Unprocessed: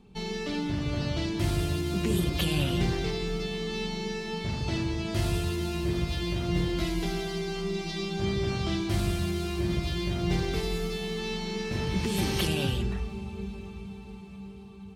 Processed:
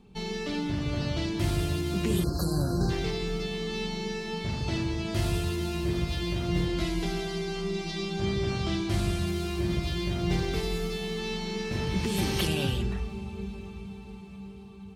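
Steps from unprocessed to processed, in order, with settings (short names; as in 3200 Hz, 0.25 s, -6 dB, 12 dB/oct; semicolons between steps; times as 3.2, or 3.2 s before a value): 2.24–2.9 spectral delete 1700–3900 Hz; 6.66–9.27 LPF 12000 Hz 12 dB/oct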